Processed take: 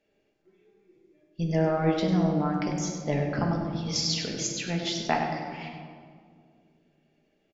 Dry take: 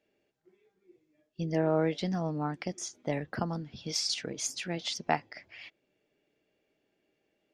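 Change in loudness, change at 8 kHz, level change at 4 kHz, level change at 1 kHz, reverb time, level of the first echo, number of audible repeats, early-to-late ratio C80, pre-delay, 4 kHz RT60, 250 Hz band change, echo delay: +5.0 dB, +3.0 dB, +4.0 dB, +5.0 dB, 2.1 s, -9.0 dB, 1, 3.5 dB, 4 ms, 1.1 s, +7.0 dB, 98 ms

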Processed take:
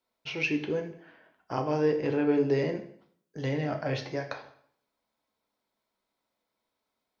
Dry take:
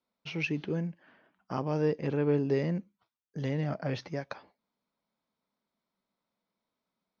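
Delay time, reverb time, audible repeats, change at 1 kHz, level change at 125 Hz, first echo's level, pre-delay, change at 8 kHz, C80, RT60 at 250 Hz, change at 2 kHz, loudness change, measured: no echo, 0.60 s, no echo, +4.5 dB, -2.0 dB, no echo, 8 ms, no reading, 14.0 dB, 0.60 s, +4.5 dB, +2.5 dB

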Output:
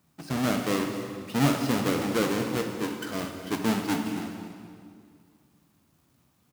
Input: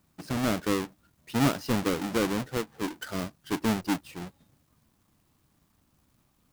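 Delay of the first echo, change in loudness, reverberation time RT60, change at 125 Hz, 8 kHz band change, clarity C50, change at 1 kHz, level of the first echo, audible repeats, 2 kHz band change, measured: 251 ms, +1.5 dB, 2.2 s, +1.5 dB, +1.5 dB, 4.5 dB, +1.5 dB, -15.0 dB, 1, +2.0 dB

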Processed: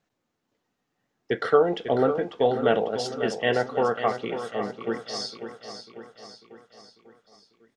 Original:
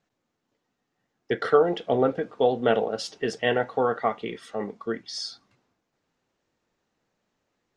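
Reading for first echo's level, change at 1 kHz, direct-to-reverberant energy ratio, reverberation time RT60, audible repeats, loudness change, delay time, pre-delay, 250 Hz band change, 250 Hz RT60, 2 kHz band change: -10.0 dB, +0.5 dB, no reverb, no reverb, 5, +0.5 dB, 546 ms, no reverb, +0.5 dB, no reverb, +0.5 dB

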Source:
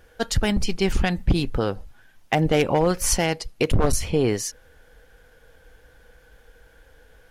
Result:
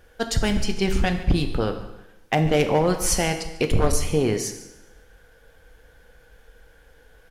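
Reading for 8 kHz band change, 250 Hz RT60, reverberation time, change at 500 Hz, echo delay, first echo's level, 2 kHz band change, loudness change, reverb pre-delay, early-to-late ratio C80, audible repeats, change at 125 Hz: 0.0 dB, 1.0 s, 0.95 s, 0.0 dB, 142 ms, -17.5 dB, 0.0 dB, 0.0 dB, 5 ms, 11.0 dB, 1, 0.0 dB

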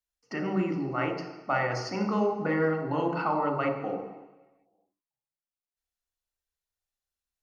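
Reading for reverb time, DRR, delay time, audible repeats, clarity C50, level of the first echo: 1.1 s, 2.0 dB, no echo, no echo, 5.0 dB, no echo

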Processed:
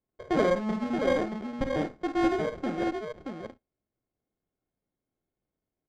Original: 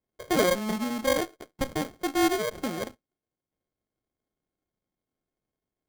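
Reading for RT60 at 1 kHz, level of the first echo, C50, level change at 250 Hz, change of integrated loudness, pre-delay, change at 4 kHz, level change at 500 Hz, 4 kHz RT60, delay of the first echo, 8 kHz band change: no reverb, -8.5 dB, no reverb, +0.5 dB, -1.0 dB, no reverb, -8.5 dB, 0.0 dB, no reverb, 51 ms, under -15 dB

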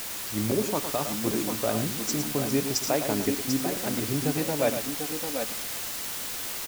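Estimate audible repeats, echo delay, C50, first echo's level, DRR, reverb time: 2, 110 ms, no reverb, -9.0 dB, no reverb, no reverb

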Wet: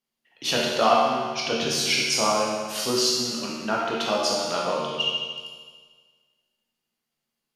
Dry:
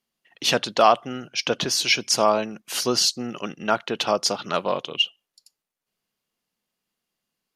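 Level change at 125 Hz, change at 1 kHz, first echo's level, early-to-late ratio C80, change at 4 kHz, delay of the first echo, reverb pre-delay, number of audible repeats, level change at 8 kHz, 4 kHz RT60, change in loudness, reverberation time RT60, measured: -1.0 dB, -1.0 dB, no echo, 1.0 dB, -1.0 dB, no echo, 13 ms, no echo, -1.0 dB, 1.6 s, -1.0 dB, 1.6 s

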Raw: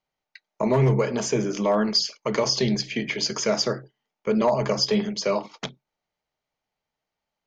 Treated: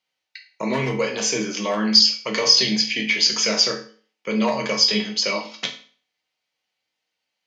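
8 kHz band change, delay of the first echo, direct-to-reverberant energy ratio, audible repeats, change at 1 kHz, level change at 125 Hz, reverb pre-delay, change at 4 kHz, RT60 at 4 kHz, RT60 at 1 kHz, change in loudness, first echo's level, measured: +7.0 dB, no echo, 1.0 dB, no echo, 0.0 dB, -7.0 dB, 4 ms, +9.5 dB, 0.40 s, 0.45 s, +5.0 dB, no echo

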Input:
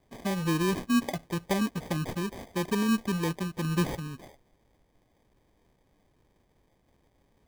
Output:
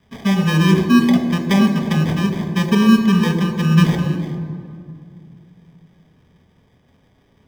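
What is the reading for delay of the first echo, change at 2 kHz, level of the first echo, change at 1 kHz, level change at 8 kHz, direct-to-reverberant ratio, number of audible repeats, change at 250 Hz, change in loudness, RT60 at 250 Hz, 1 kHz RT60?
no echo, +12.0 dB, no echo, +10.0 dB, +6.0 dB, 4.0 dB, no echo, +15.0 dB, +14.0 dB, 3.1 s, 2.1 s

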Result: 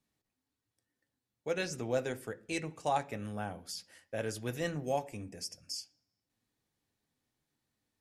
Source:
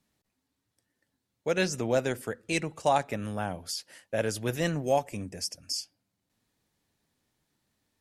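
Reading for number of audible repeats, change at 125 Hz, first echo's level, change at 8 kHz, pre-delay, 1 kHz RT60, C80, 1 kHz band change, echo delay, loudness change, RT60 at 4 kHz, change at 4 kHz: no echo, -7.0 dB, no echo, -7.5 dB, 3 ms, 0.40 s, 25.0 dB, -6.0 dB, no echo, -7.0 dB, 0.55 s, -7.5 dB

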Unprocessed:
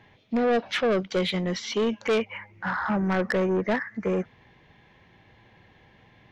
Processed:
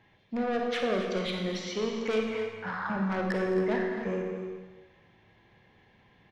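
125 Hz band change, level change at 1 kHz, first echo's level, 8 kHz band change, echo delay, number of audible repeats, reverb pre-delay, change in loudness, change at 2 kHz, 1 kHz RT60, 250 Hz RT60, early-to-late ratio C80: -5.0 dB, -4.5 dB, -14.0 dB, no reading, 214 ms, 2, 31 ms, -4.5 dB, -5.0 dB, 1.3 s, 1.1 s, 3.5 dB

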